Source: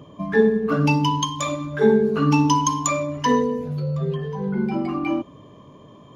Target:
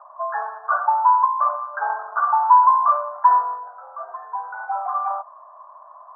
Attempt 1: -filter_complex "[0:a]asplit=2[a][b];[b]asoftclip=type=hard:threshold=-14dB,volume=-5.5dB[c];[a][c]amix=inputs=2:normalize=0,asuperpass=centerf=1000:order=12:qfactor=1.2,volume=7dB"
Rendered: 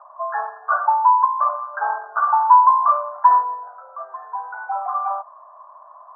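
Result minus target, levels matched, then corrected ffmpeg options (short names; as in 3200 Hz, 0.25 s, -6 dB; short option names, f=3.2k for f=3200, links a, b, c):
hard clip: distortion -8 dB
-filter_complex "[0:a]asplit=2[a][b];[b]asoftclip=type=hard:threshold=-22dB,volume=-5.5dB[c];[a][c]amix=inputs=2:normalize=0,asuperpass=centerf=1000:order=12:qfactor=1.2,volume=7dB"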